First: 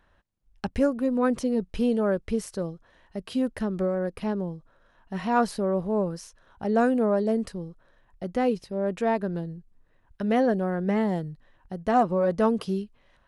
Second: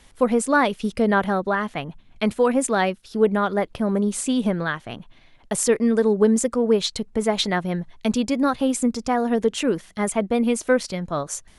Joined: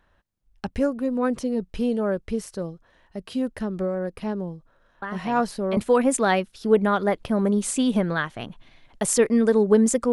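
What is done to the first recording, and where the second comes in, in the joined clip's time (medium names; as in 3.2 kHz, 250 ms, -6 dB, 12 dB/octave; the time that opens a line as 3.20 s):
first
5.02 s: add second from 1.52 s 0.75 s -9.5 dB
5.77 s: go over to second from 2.27 s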